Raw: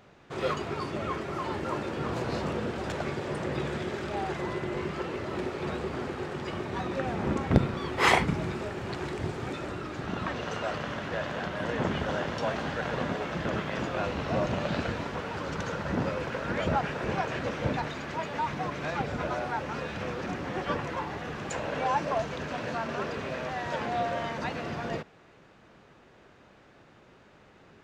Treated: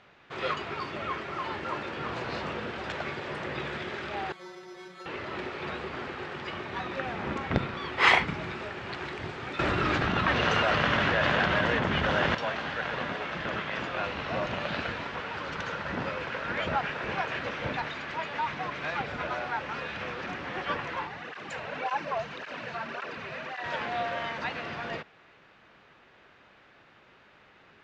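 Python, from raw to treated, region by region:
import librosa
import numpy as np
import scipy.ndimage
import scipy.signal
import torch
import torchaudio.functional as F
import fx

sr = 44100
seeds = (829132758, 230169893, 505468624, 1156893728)

y = fx.chain(x, sr, fx.low_shelf(hz=260.0, db=-7.0),
    fx.stiff_resonator(f0_hz=180.0, decay_s=0.22, stiffness=0.002),
    fx.resample_bad(factor=8, down='filtered', up='hold'), at=(4.32, 5.06))
y = fx.chain(y, sr, fx.low_shelf(hz=200.0, db=7.5),
    fx.env_flatten(amount_pct=100), at=(9.59, 12.35))
y = fx.chain(y, sr, fx.notch(hz=3300.0, q=24.0),
    fx.flanger_cancel(hz=1.8, depth_ms=4.0), at=(21.07, 23.64))
y = scipy.signal.sosfilt(scipy.signal.butter(2, 3300.0, 'lowpass', fs=sr, output='sos'), y)
y = fx.tilt_shelf(y, sr, db=-7.0, hz=970.0)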